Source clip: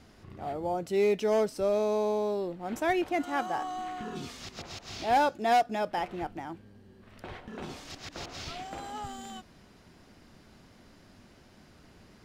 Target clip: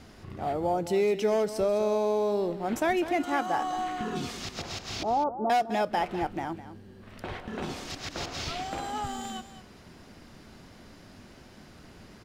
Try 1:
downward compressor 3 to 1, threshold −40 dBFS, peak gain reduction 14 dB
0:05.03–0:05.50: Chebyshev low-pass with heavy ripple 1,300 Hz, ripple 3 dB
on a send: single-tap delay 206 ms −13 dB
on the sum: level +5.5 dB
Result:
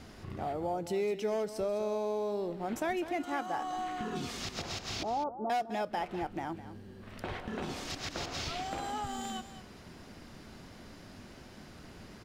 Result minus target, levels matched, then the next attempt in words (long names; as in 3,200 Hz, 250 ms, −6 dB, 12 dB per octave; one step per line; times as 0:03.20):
downward compressor: peak gain reduction +7 dB
downward compressor 3 to 1, threshold −29.5 dBFS, peak gain reduction 7 dB
0:05.03–0:05.50: Chebyshev low-pass with heavy ripple 1,300 Hz, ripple 3 dB
on a send: single-tap delay 206 ms −13 dB
on the sum: level +5.5 dB